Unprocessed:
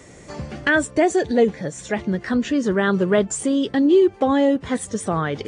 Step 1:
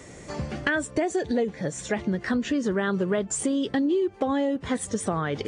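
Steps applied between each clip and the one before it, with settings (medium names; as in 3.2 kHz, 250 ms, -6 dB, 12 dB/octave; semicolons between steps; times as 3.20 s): compression, threshold -22 dBFS, peak gain reduction 10.5 dB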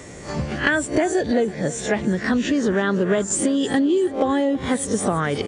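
reverse spectral sustain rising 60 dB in 0.30 s; feedback delay 330 ms, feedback 45%, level -17.5 dB; trim +4.5 dB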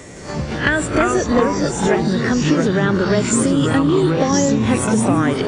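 ever faster or slower copies 164 ms, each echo -4 st, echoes 3; on a send at -19 dB: reverberation RT60 2.1 s, pre-delay 46 ms; on the sum: trim +2 dB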